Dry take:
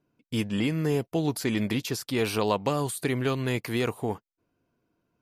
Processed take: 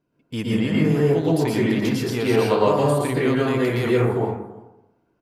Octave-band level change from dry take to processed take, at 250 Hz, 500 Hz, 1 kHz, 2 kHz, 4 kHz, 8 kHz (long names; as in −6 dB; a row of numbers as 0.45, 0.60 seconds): +7.5, +9.5, +7.0, +5.5, +2.5, −0.5 decibels